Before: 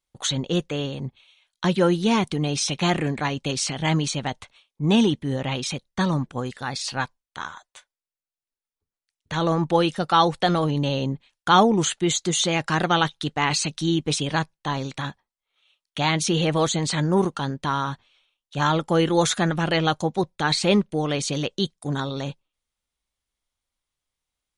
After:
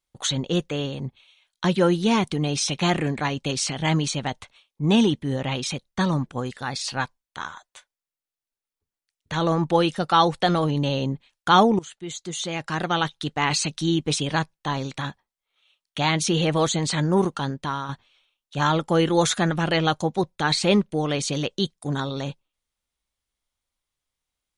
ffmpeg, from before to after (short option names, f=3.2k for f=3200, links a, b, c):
-filter_complex "[0:a]asplit=3[a][b][c];[a]atrim=end=11.79,asetpts=PTS-STARTPTS,afade=t=out:st=11.786:d=0.004:c=hsin:silence=0.1[d];[b]atrim=start=11.79:end=17.89,asetpts=PTS-STARTPTS,afade=t=in:d=1.74:silence=0.1,afade=t=out:st=5.68:d=0.42:silence=0.446684[e];[c]atrim=start=17.89,asetpts=PTS-STARTPTS,afade=t=in:d=0.004:c=hsin:silence=0.446684[f];[d][e][f]concat=n=3:v=0:a=1"